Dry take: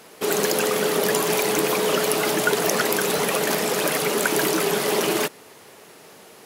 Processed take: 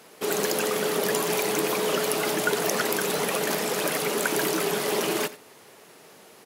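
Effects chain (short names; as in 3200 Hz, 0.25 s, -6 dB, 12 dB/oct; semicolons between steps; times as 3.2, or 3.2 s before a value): HPF 77 Hz; echo 87 ms -17 dB; gain -4 dB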